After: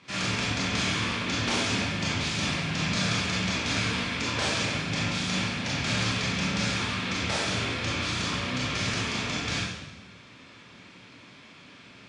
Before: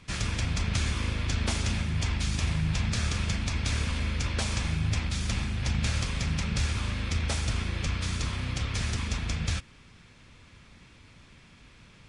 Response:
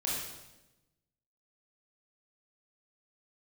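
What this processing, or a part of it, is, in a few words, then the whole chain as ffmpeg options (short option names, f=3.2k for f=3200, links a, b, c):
supermarket ceiling speaker: -filter_complex "[0:a]highpass=210,lowpass=5.8k[a];[1:a]atrim=start_sample=2205[b];[a][b]afir=irnorm=-1:irlink=0,volume=2dB"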